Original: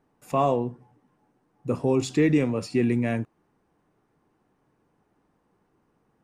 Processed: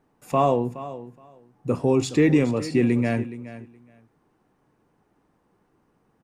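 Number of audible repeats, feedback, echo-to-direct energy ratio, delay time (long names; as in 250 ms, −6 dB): 2, 16%, −15.0 dB, 420 ms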